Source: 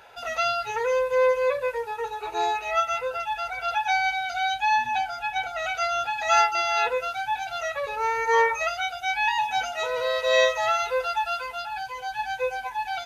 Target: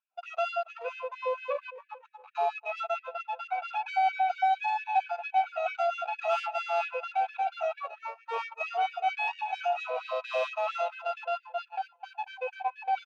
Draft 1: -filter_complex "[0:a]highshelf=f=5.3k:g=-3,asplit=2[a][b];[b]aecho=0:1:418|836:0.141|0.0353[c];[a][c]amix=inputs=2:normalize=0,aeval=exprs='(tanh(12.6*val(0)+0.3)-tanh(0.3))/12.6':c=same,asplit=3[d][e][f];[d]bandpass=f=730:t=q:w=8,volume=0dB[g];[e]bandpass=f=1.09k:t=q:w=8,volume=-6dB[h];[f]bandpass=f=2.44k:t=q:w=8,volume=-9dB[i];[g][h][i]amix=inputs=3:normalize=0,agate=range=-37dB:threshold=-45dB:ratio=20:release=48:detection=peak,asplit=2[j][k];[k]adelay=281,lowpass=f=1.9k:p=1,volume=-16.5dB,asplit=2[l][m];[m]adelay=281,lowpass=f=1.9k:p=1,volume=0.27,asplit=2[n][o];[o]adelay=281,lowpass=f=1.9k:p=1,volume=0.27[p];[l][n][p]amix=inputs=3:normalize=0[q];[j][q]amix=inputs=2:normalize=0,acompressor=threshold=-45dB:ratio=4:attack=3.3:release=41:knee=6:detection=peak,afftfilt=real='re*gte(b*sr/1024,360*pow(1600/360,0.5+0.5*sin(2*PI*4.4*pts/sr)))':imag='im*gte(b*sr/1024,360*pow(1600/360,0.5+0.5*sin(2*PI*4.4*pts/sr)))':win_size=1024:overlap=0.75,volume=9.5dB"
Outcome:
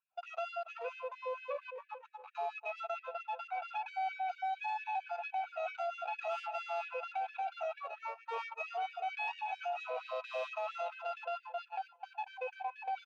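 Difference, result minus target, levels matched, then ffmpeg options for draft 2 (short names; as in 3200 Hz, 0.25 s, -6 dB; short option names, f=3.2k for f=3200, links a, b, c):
compressor: peak gain reduction +14 dB
-filter_complex "[0:a]highshelf=f=5.3k:g=-3,asplit=2[a][b];[b]aecho=0:1:418|836:0.141|0.0353[c];[a][c]amix=inputs=2:normalize=0,aeval=exprs='(tanh(12.6*val(0)+0.3)-tanh(0.3))/12.6':c=same,asplit=3[d][e][f];[d]bandpass=f=730:t=q:w=8,volume=0dB[g];[e]bandpass=f=1.09k:t=q:w=8,volume=-6dB[h];[f]bandpass=f=2.44k:t=q:w=8,volume=-9dB[i];[g][h][i]amix=inputs=3:normalize=0,agate=range=-37dB:threshold=-45dB:ratio=20:release=48:detection=peak,asplit=2[j][k];[k]adelay=281,lowpass=f=1.9k:p=1,volume=-16.5dB,asplit=2[l][m];[m]adelay=281,lowpass=f=1.9k:p=1,volume=0.27,asplit=2[n][o];[o]adelay=281,lowpass=f=1.9k:p=1,volume=0.27[p];[l][n][p]amix=inputs=3:normalize=0[q];[j][q]amix=inputs=2:normalize=0,afftfilt=real='re*gte(b*sr/1024,360*pow(1600/360,0.5+0.5*sin(2*PI*4.4*pts/sr)))':imag='im*gte(b*sr/1024,360*pow(1600/360,0.5+0.5*sin(2*PI*4.4*pts/sr)))':win_size=1024:overlap=0.75,volume=9.5dB"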